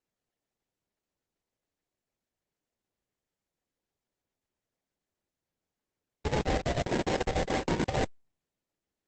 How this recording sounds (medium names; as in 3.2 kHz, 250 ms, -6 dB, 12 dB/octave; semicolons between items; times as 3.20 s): a buzz of ramps at a fixed pitch in blocks of 8 samples; chopped level 6.8 Hz, depth 65%, duty 70%; aliases and images of a low sample rate 1.3 kHz, jitter 20%; Opus